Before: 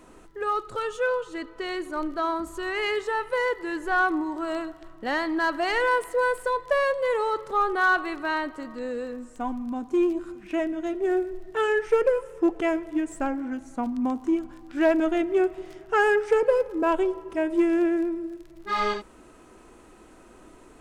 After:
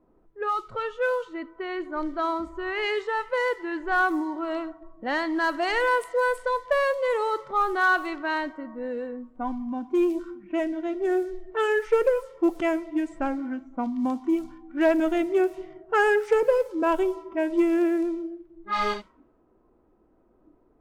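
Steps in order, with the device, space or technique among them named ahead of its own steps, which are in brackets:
cassette deck with a dynamic noise filter (white noise bed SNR 32 dB; low-pass that shuts in the quiet parts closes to 700 Hz, open at −20 dBFS)
noise reduction from a noise print of the clip's start 11 dB

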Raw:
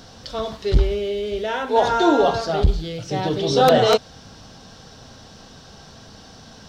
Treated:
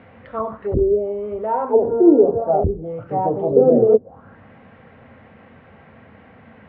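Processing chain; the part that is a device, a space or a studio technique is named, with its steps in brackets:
high-shelf EQ 2,500 Hz +4.5 dB
envelope filter bass rig (envelope-controlled low-pass 380–2,300 Hz down, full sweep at −14 dBFS; loudspeaker in its box 77–2,400 Hz, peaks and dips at 90 Hz +6 dB, 230 Hz +6 dB, 520 Hz +6 dB, 1,600 Hz −6 dB)
level −4 dB

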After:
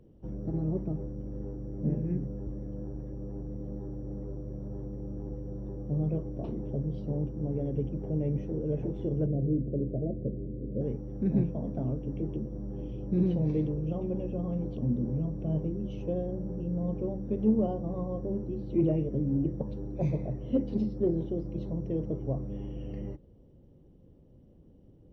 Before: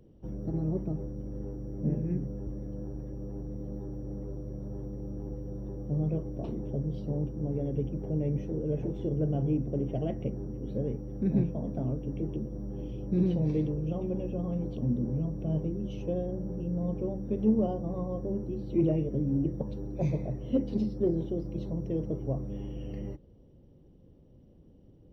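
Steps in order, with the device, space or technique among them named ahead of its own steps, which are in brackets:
behind a face mask (high-shelf EQ 3,400 Hz −7.5 dB)
0:09.26–0:10.81: Butterworth low-pass 620 Hz 48 dB per octave

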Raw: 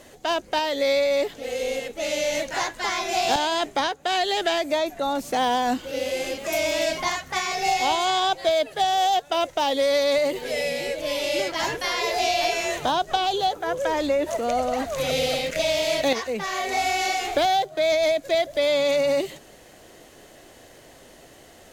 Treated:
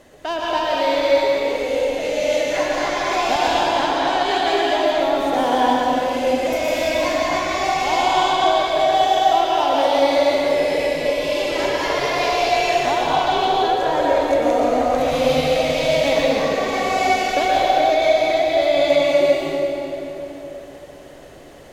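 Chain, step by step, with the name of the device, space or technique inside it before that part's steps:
swimming-pool hall (convolution reverb RT60 3.4 s, pre-delay 109 ms, DRR −6 dB; high-shelf EQ 3,000 Hz −7.5 dB)

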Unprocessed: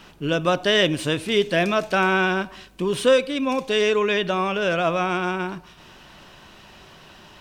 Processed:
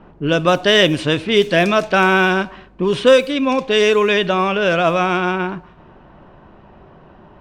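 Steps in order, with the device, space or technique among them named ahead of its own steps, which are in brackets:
cassette deck with a dynamic noise filter (white noise bed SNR 34 dB; low-pass that shuts in the quiet parts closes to 810 Hz, open at −15.5 dBFS)
level +6 dB

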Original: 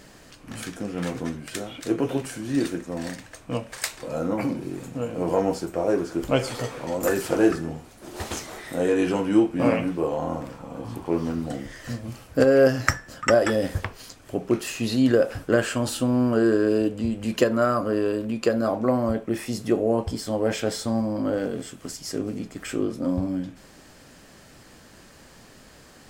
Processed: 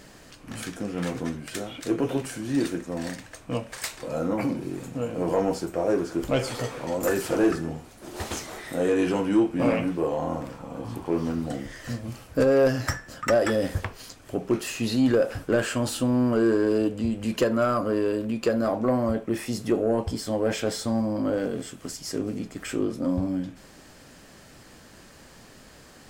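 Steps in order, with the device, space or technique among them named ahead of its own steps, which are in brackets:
saturation between pre-emphasis and de-emphasis (high-shelf EQ 2,000 Hz +12 dB; soft clipping −12.5 dBFS, distortion −15 dB; high-shelf EQ 2,000 Hz −12 dB)

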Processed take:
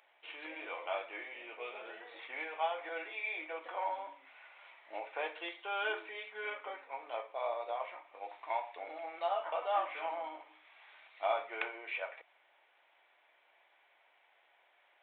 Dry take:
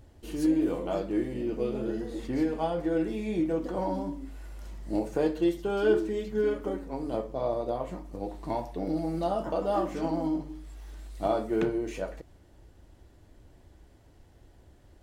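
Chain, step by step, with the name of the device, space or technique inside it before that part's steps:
0:02.89–0:04.07: Butterworth high-pass 230 Hz 96 dB per octave
musical greeting card (downsampling to 8,000 Hz; high-pass filter 740 Hz 24 dB per octave; parametric band 2,300 Hz +12 dB 0.29 octaves)

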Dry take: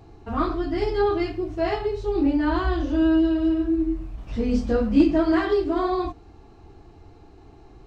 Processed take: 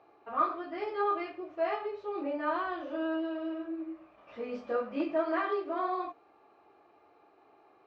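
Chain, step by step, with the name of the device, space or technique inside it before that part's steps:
tin-can telephone (band-pass filter 560–2,400 Hz; hollow resonant body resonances 580/1,200/2,400 Hz, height 10 dB)
level −5.5 dB

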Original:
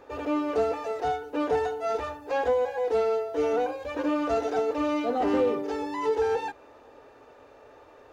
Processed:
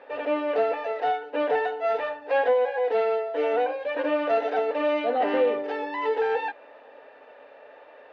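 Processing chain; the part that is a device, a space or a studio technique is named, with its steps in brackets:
phone earpiece (loudspeaker in its box 340–3,700 Hz, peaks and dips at 360 Hz −9 dB, 590 Hz +5 dB, 1,200 Hz −5 dB, 1,800 Hz +6 dB, 2,800 Hz +3 dB)
level +3 dB

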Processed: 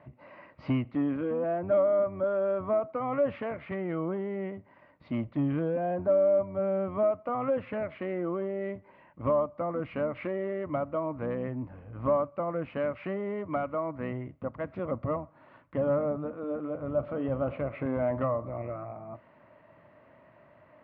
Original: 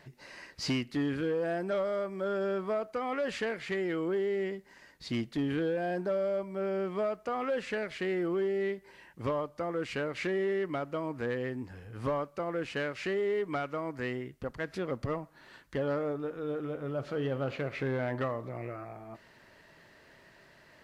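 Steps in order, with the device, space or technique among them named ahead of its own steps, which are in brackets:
sub-octave bass pedal (sub-octave generator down 1 octave, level −5 dB; loudspeaker in its box 84–2,200 Hz, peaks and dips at 110 Hz +4 dB, 270 Hz +4 dB, 410 Hz −7 dB, 600 Hz +9 dB, 1,100 Hz +6 dB, 1,700 Hz −10 dB)

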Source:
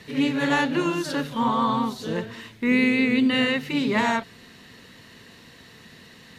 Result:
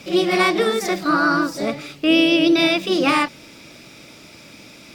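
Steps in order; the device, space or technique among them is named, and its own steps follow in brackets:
nightcore (speed change +29%)
level +5 dB

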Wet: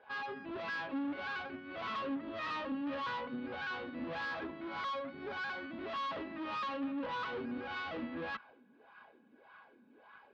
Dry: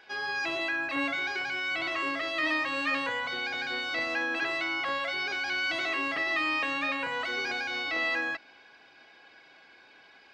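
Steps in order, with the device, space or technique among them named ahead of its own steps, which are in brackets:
wah-wah guitar rig (LFO wah 1.7 Hz 210–1,200 Hz, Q 4; tube saturation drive 48 dB, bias 0.65; loudspeaker in its box 77–4,000 Hz, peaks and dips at 230 Hz +8 dB, 340 Hz −5 dB, 720 Hz −8 dB, 2,100 Hz −5 dB)
0:04.25–0:05.65: notch filter 2,800 Hz, Q 10
level +13 dB

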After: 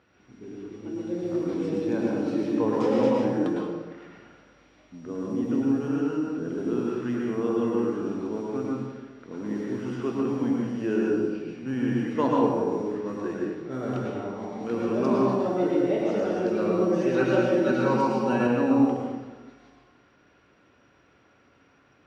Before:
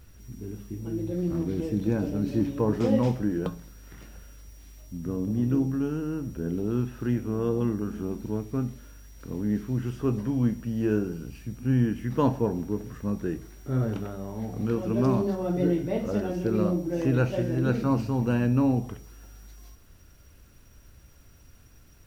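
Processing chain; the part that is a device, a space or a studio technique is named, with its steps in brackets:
low-pass that shuts in the quiet parts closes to 2,500 Hz, open at −22.5 dBFS
supermarket ceiling speaker (band-pass filter 300–6,700 Hz; convolution reverb RT60 1.2 s, pre-delay 100 ms, DRR −3 dB)
0:16.81–0:18.47: comb filter 5.3 ms, depth 76%

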